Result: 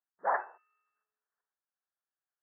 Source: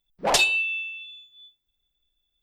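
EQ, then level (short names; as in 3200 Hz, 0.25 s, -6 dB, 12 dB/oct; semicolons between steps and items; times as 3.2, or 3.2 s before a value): HPF 970 Hz 12 dB/oct; steep low-pass 1800 Hz 96 dB/oct; 0.0 dB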